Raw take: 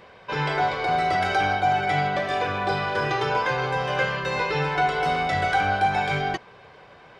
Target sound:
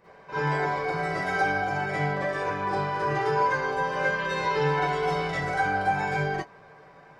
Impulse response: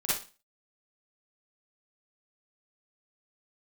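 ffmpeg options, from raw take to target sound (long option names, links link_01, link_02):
-filter_complex "[0:a]asetnsamples=nb_out_samples=441:pad=0,asendcmd='4.14 equalizer g -3;5.35 equalizer g -11.5',equalizer=frequency=3300:width_type=o:width=0.78:gain=-11[link_01];[1:a]atrim=start_sample=2205,afade=type=out:start_time=0.13:duration=0.01,atrim=end_sample=6174[link_02];[link_01][link_02]afir=irnorm=-1:irlink=0,volume=-8.5dB"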